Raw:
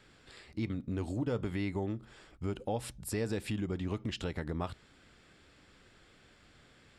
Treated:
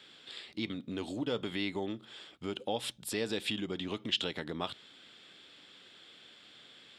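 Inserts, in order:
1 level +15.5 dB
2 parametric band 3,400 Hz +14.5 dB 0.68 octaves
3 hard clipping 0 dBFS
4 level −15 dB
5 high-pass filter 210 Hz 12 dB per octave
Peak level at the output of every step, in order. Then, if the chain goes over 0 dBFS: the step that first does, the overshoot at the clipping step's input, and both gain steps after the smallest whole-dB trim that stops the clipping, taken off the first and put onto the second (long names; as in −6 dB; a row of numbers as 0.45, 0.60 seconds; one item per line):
−7.0, −2.0, −2.0, −17.0, −17.0 dBFS
no step passes full scale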